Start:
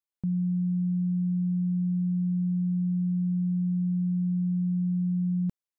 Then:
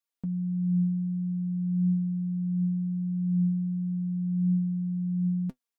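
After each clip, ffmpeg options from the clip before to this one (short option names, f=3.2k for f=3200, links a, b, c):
-af "lowshelf=f=150:g=-9.5,flanger=delay=6:depth=8.8:regen=54:speed=0.38:shape=triangular,aecho=1:1:4.3:0.65,volume=5.5dB"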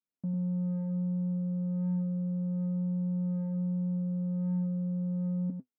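-af "asoftclip=type=tanh:threshold=-35.5dB,bandpass=f=200:t=q:w=1.4:csg=0,aecho=1:1:99:0.473,volume=6dB"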